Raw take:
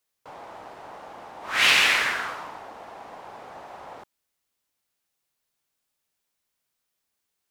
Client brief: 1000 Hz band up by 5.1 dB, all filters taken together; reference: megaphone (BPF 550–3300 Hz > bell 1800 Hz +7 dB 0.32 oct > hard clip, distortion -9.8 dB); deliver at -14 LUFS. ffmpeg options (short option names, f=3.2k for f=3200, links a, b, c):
-af "highpass=550,lowpass=3.3k,equalizer=f=1k:t=o:g=6.5,equalizer=f=1.8k:t=o:w=0.32:g=7,asoftclip=type=hard:threshold=-16.5dB,volume=7dB"